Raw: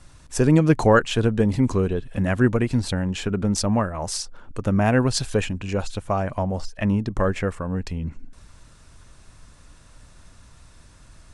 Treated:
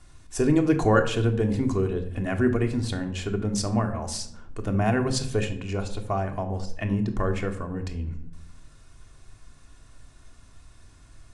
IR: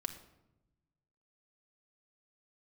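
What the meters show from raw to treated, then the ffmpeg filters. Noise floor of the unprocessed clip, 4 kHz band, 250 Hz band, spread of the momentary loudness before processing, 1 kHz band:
-50 dBFS, -4.5 dB, -3.5 dB, 11 LU, -3.5 dB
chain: -filter_complex "[1:a]atrim=start_sample=2205,asetrate=66150,aresample=44100[a];[0:a][a]afir=irnorm=-1:irlink=0"

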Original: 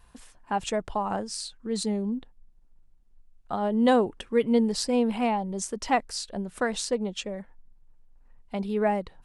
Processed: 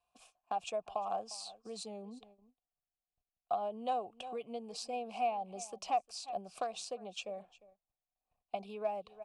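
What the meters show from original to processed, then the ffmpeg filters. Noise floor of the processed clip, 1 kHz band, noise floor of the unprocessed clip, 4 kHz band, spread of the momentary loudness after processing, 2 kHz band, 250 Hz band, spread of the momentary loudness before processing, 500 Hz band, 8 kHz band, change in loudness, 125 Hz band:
under -85 dBFS, -6.5 dB, -57 dBFS, -11.0 dB, 10 LU, -16.0 dB, -23.0 dB, 11 LU, -12.0 dB, -12.5 dB, -12.0 dB, under -20 dB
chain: -filter_complex "[0:a]equalizer=f=260:t=o:w=1.6:g=-5,aecho=1:1:352:0.0794,agate=range=-15dB:threshold=-49dB:ratio=16:detection=peak,acrossover=split=220|1100|1600[a][b][c][d];[c]acrusher=bits=4:mix=0:aa=0.5[e];[a][b][e][d]amix=inputs=4:normalize=0,acompressor=threshold=-35dB:ratio=3,asplit=3[f][g][h];[f]bandpass=f=730:t=q:w=8,volume=0dB[i];[g]bandpass=f=1.09k:t=q:w=8,volume=-6dB[j];[h]bandpass=f=2.44k:t=q:w=8,volume=-9dB[k];[i][j][k]amix=inputs=3:normalize=0,bass=f=250:g=7,treble=f=4k:g=14,volume=8.5dB"

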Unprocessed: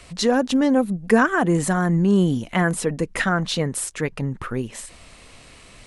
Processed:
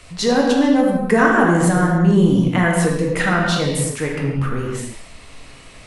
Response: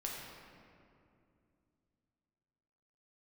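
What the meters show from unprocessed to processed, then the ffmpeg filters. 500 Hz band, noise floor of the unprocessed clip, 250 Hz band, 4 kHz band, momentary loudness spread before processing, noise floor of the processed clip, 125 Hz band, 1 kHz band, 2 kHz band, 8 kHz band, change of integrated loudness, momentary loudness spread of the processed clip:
+4.5 dB, -47 dBFS, +4.0 dB, +3.5 dB, 11 LU, -42 dBFS, +5.5 dB, +4.5 dB, +4.5 dB, +2.5 dB, +4.5 dB, 9 LU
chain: -filter_complex "[1:a]atrim=start_sample=2205,afade=t=out:st=0.35:d=0.01,atrim=end_sample=15876[a];[0:a][a]afir=irnorm=-1:irlink=0,volume=4dB"

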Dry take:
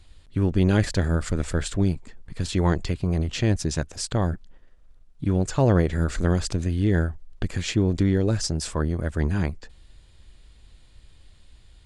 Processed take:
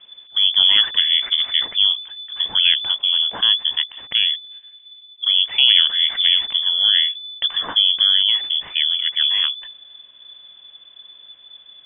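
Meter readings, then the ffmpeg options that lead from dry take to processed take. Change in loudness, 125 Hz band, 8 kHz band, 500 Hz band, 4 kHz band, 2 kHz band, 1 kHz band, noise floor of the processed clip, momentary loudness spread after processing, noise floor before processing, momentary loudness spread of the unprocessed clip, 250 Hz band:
+9.5 dB, under -30 dB, under -40 dB, under -15 dB, +26.0 dB, +7.5 dB, -3.0 dB, -48 dBFS, 9 LU, -53 dBFS, 10 LU, under -25 dB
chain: -af "aeval=exprs='0.447*(cos(1*acos(clip(val(0)/0.447,-1,1)))-cos(1*PI/2))+0.00501*(cos(6*acos(clip(val(0)/0.447,-1,1)))-cos(6*PI/2))':c=same,lowpass=f=3k:t=q:w=0.5098,lowpass=f=3k:t=q:w=0.6013,lowpass=f=3k:t=q:w=0.9,lowpass=f=3k:t=q:w=2.563,afreqshift=-3500,volume=5dB"

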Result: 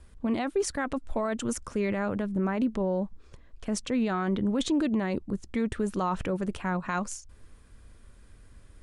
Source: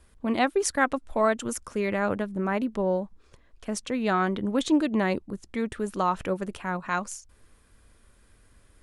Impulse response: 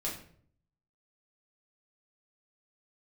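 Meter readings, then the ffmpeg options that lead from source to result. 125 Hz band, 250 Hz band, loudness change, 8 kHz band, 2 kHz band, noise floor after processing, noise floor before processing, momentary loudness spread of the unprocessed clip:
+1.0 dB, 0.0 dB, -2.5 dB, -3.0 dB, -6.0 dB, -53 dBFS, -59 dBFS, 9 LU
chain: -af "lowpass=f=10k:w=0.5412,lowpass=f=10k:w=1.3066,lowshelf=f=260:g=7,alimiter=limit=-19.5dB:level=0:latency=1:release=25"

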